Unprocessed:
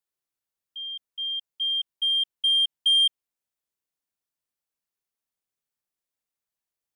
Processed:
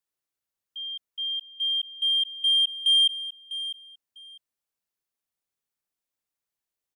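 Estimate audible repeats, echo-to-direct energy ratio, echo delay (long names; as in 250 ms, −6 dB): 2, −13.0 dB, 650 ms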